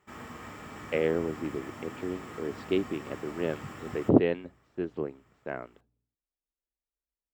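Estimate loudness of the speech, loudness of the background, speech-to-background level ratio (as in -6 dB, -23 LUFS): -31.5 LUFS, -44.0 LUFS, 12.5 dB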